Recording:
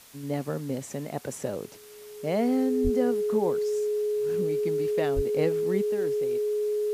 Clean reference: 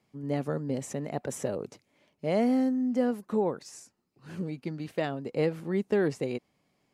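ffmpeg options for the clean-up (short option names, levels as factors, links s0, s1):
-filter_complex "[0:a]bandreject=f=420:w=30,asplit=3[s0][s1][s2];[s0]afade=t=out:st=2.83:d=0.02[s3];[s1]highpass=f=140:w=0.5412,highpass=f=140:w=1.3066,afade=t=in:st=2.83:d=0.02,afade=t=out:st=2.95:d=0.02[s4];[s2]afade=t=in:st=2.95:d=0.02[s5];[s3][s4][s5]amix=inputs=3:normalize=0,asplit=3[s6][s7][s8];[s6]afade=t=out:st=5.15:d=0.02[s9];[s7]highpass=f=140:w=0.5412,highpass=f=140:w=1.3066,afade=t=in:st=5.15:d=0.02,afade=t=out:st=5.27:d=0.02[s10];[s8]afade=t=in:st=5.27:d=0.02[s11];[s9][s10][s11]amix=inputs=3:normalize=0,afwtdn=0.0028,asetnsamples=n=441:p=0,asendcmd='5.86 volume volume 9.5dB',volume=1"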